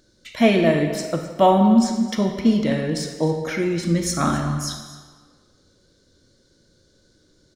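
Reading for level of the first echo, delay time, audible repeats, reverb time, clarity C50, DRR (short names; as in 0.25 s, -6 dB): -17.0 dB, 0.262 s, 1, 1.5 s, 5.5 dB, 4.5 dB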